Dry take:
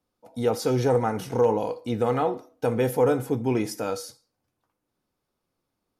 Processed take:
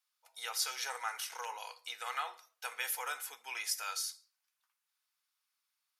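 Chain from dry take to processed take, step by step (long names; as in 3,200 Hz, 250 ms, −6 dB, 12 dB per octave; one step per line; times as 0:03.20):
Bessel high-pass filter 1,900 Hz, order 4
level +2.5 dB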